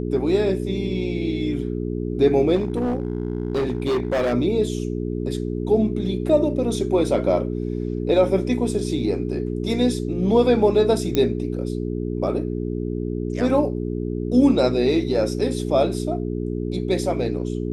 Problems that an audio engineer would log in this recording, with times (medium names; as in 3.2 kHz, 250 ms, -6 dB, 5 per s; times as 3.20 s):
hum 60 Hz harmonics 7 -26 dBFS
2.55–4.34 s: clipped -18 dBFS
11.15 s: pop -8 dBFS